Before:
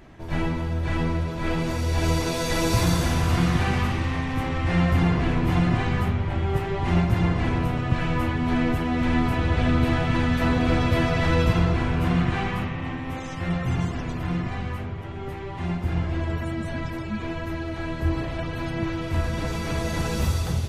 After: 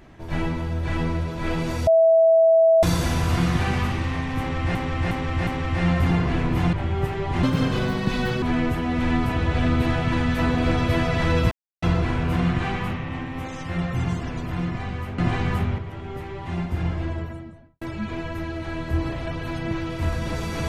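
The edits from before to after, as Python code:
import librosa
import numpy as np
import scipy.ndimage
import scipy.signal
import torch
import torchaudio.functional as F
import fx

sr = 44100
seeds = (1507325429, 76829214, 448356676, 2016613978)

y = fx.studio_fade_out(x, sr, start_s=16.0, length_s=0.93)
y = fx.edit(y, sr, fx.bleep(start_s=1.87, length_s=0.96, hz=654.0, db=-12.0),
    fx.repeat(start_s=4.39, length_s=0.36, count=4),
    fx.move(start_s=5.65, length_s=0.6, to_s=14.9),
    fx.speed_span(start_s=6.95, length_s=1.5, speed=1.51),
    fx.insert_silence(at_s=11.54, length_s=0.31), tone=tone)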